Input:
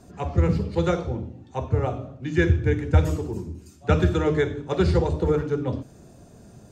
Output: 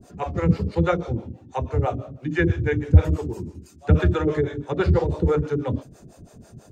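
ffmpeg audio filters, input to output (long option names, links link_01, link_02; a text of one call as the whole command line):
ffmpeg -i in.wav -filter_complex "[0:a]acrossover=split=3100[link_01][link_02];[link_02]acompressor=threshold=-53dB:ratio=4:attack=1:release=60[link_03];[link_01][link_03]amix=inputs=2:normalize=0,acrossover=split=410[link_04][link_05];[link_04]aeval=exprs='val(0)*(1-1/2+1/2*cos(2*PI*6.1*n/s))':channel_layout=same[link_06];[link_05]aeval=exprs='val(0)*(1-1/2-1/2*cos(2*PI*6.1*n/s))':channel_layout=same[link_07];[link_06][link_07]amix=inputs=2:normalize=0,volume=6dB" out.wav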